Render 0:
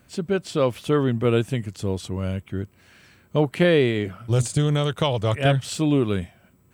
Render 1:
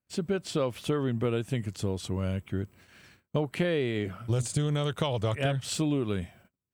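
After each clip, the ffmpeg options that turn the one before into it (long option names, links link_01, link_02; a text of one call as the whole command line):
ffmpeg -i in.wav -af "acompressor=threshold=-23dB:ratio=6,agate=range=-32dB:threshold=-52dB:ratio=16:detection=peak,volume=-1.5dB" out.wav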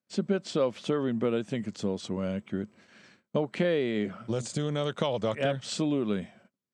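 ffmpeg -i in.wav -af "highpass=190,equalizer=frequency=210:width_type=q:width=4:gain=8,equalizer=frequency=550:width_type=q:width=4:gain=4,equalizer=frequency=2700:width_type=q:width=4:gain=-3,lowpass=frequency=7300:width=0.5412,lowpass=frequency=7300:width=1.3066" out.wav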